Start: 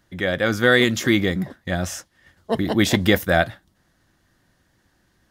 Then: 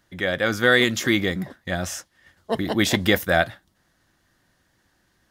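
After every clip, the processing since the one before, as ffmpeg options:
-af "lowshelf=f=440:g=-4.5"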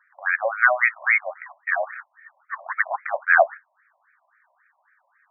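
-af "afftfilt=real='re*between(b*sr/1024,760*pow(1800/760,0.5+0.5*sin(2*PI*3.7*pts/sr))/1.41,760*pow(1800/760,0.5+0.5*sin(2*PI*3.7*pts/sr))*1.41)':imag='im*between(b*sr/1024,760*pow(1800/760,0.5+0.5*sin(2*PI*3.7*pts/sr))/1.41,760*pow(1800/760,0.5+0.5*sin(2*PI*3.7*pts/sr))*1.41)':win_size=1024:overlap=0.75,volume=2.82"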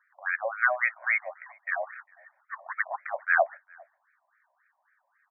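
-filter_complex "[0:a]asplit=2[s0][s1];[s1]adelay=402.3,volume=0.0398,highshelf=f=4000:g=-9.05[s2];[s0][s2]amix=inputs=2:normalize=0,volume=0.447"

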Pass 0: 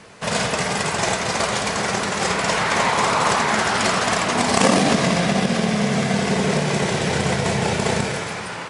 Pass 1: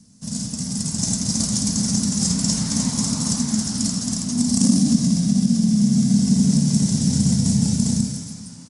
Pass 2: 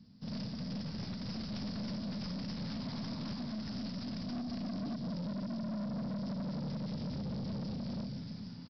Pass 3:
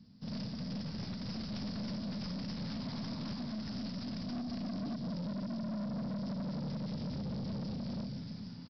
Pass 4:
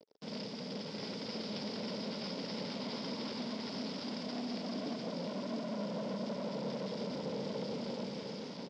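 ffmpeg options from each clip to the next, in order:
-af "firequalizer=gain_entry='entry(130,0);entry(250,7);entry(360,-22);entry(1300,-26);entry(2400,-26);entry(5400,2)':delay=0.05:min_phase=1,dynaudnorm=f=140:g=13:m=3.76,volume=0.668"
-af "alimiter=limit=0.188:level=0:latency=1:release=422,aeval=exprs='0.188*(cos(1*acos(clip(val(0)/0.188,-1,1)))-cos(1*PI/2))+0.0299*(cos(4*acos(clip(val(0)/0.188,-1,1)))-cos(4*PI/2))':c=same,aresample=11025,asoftclip=type=tanh:threshold=0.0335,aresample=44100,volume=0.501"
-af anull
-af "acrusher=bits=7:mix=0:aa=0.5,highpass=420,equalizer=f=440:t=q:w=4:g=7,equalizer=f=700:t=q:w=4:g=-6,equalizer=f=1200:t=q:w=4:g=-8,equalizer=f=1700:t=q:w=4:g=-8,equalizer=f=2600:t=q:w=4:g=-4,equalizer=f=4200:t=q:w=4:g=-7,lowpass=f=5000:w=0.5412,lowpass=f=5000:w=1.3066,aecho=1:1:703:0.596,volume=2.51"

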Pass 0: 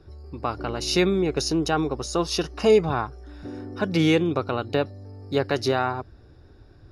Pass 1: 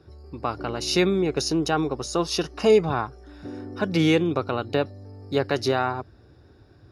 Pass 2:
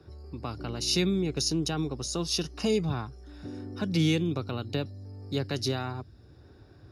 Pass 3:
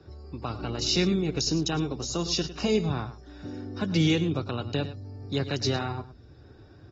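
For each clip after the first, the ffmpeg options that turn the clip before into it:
-af "highpass=76"
-filter_complex "[0:a]acrossover=split=260|3000[s0][s1][s2];[s1]acompressor=threshold=0.00126:ratio=1.5[s3];[s0][s3][s2]amix=inputs=3:normalize=0"
-af "aecho=1:1:105:0.2,volume=1.19" -ar 44100 -c:a aac -b:a 24k

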